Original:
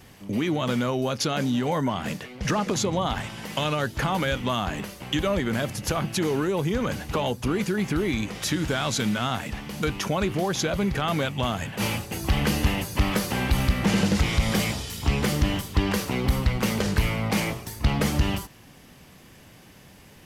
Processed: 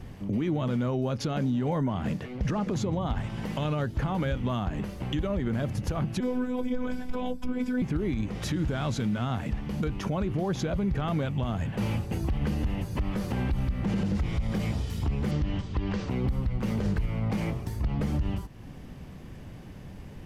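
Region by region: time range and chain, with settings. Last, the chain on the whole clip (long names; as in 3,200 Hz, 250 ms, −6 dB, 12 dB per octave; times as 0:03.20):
0:06.20–0:07.82: EQ curve with evenly spaced ripples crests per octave 1.7, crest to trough 8 dB + phases set to zero 251 Hz
0:15.31–0:16.10: Bessel low-pass filter 4,400 Hz, order 8 + high-shelf EQ 2,400 Hz +7.5 dB
whole clip: spectral tilt −3 dB per octave; downward compressor 2 to 1, threshold −30 dBFS; brickwall limiter −20 dBFS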